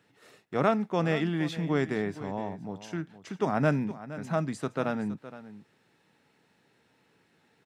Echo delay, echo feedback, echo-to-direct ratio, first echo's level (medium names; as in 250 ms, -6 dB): 467 ms, no regular repeats, -15.0 dB, -15.0 dB